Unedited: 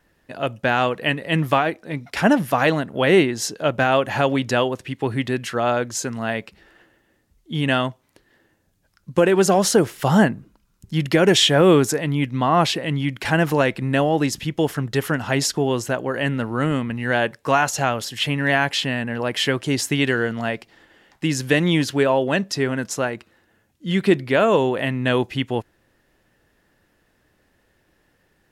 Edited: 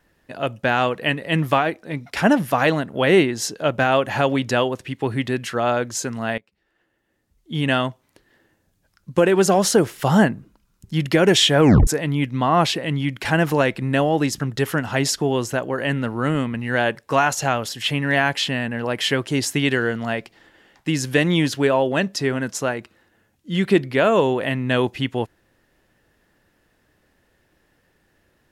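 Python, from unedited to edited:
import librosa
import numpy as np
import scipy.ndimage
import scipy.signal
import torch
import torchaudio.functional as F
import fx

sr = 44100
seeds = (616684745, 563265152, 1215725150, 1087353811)

y = fx.edit(x, sr, fx.fade_in_from(start_s=6.38, length_s=1.2, curve='qua', floor_db=-22.5),
    fx.tape_stop(start_s=11.6, length_s=0.27),
    fx.cut(start_s=14.4, length_s=0.36), tone=tone)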